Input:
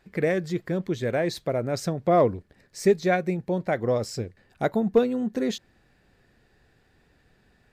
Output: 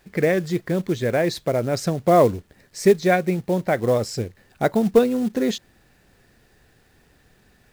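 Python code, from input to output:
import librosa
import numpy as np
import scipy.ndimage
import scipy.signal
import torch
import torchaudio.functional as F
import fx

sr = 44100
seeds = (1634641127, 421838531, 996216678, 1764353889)

y = fx.quant_companded(x, sr, bits=6)
y = y * librosa.db_to_amplitude(4.5)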